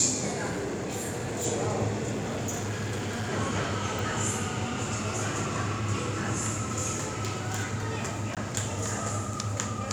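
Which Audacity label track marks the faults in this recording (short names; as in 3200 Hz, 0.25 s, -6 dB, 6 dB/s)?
0.500000	1.460000	clipped -28 dBFS
2.110000	3.300000	clipped -28 dBFS
3.990000	3.990000	pop
6.940000	7.860000	clipped -25 dBFS
8.350000	8.370000	gap 17 ms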